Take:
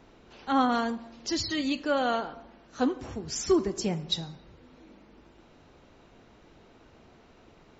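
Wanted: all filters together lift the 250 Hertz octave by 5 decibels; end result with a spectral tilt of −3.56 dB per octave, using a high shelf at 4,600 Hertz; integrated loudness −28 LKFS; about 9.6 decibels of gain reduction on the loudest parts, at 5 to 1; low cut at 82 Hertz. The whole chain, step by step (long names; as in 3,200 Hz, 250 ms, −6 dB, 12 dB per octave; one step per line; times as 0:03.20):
high-pass filter 82 Hz
parametric band 250 Hz +6 dB
high-shelf EQ 4,600 Hz +6 dB
downward compressor 5 to 1, threshold −27 dBFS
level +4 dB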